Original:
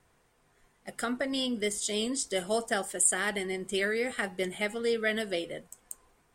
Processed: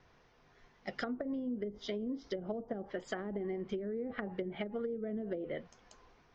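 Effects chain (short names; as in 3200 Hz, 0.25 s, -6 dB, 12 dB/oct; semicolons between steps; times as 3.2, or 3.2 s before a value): steep low-pass 6100 Hz 72 dB/oct; treble ducked by the level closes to 340 Hz, closed at -26.5 dBFS; compressor, threshold -37 dBFS, peak gain reduction 8.5 dB; gain +2.5 dB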